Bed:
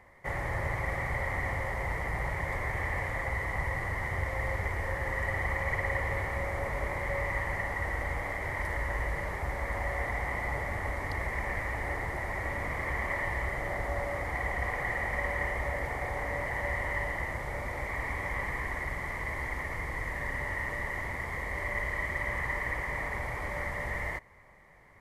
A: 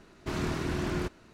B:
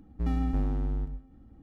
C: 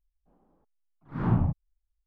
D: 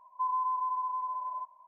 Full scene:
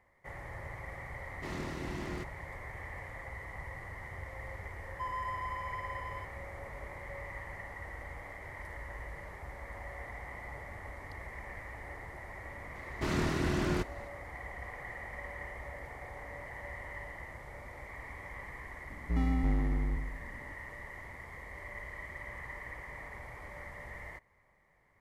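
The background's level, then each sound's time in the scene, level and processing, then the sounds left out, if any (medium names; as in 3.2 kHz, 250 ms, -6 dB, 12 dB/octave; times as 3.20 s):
bed -11.5 dB
1.16 s: add A -8.5 dB + band-stop 1.5 kHz, Q 16
4.80 s: add D -7.5 dB + hysteresis with a dead band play -39.5 dBFS
12.75 s: add A
18.90 s: add B -2 dB + spectral sustain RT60 0.79 s
not used: C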